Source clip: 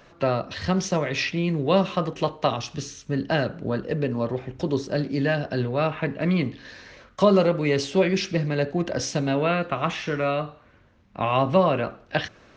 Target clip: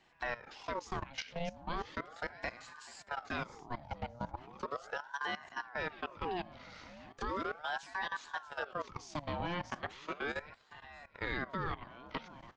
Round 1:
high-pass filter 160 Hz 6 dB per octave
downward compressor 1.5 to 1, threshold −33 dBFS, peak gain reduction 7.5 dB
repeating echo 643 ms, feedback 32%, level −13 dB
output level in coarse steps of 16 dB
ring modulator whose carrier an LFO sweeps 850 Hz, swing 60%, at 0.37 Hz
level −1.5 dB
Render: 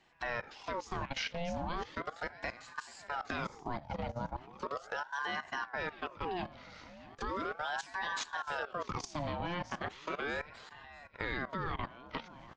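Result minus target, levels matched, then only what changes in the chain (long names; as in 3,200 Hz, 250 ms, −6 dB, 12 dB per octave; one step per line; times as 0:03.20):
downward compressor: peak gain reduction −3 dB
change: downward compressor 1.5 to 1, threshold −41.5 dBFS, peak gain reduction 10 dB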